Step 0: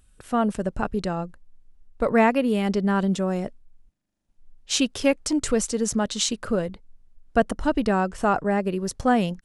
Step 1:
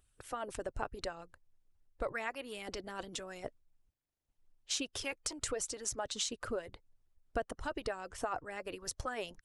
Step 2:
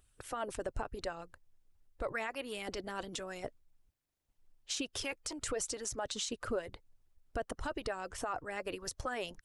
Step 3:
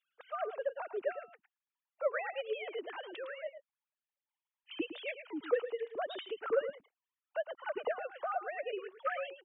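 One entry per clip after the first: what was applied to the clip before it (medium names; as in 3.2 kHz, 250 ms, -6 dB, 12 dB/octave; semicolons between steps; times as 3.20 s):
harmonic-percussive split harmonic -16 dB; peaking EQ 200 Hz -10.5 dB 0.82 oct; compression 3:1, threshold -31 dBFS, peak gain reduction 12 dB; trim -4 dB
peak limiter -30 dBFS, peak gain reduction 8.5 dB; trim +3 dB
formants replaced by sine waves; on a send: delay 108 ms -11 dB; on the sum: trim +1.5 dB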